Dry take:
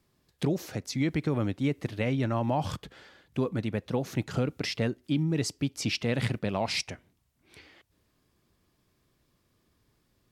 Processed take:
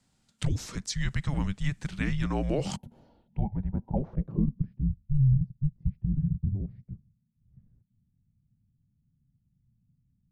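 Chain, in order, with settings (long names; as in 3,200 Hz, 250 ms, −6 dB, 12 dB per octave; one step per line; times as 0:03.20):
frequency shifter −290 Hz
gain on a spectral selection 0:02.77–0:03.97, 980–10,000 Hz −23 dB
low-pass filter sweep 7,900 Hz → 130 Hz, 0:02.91–0:04.82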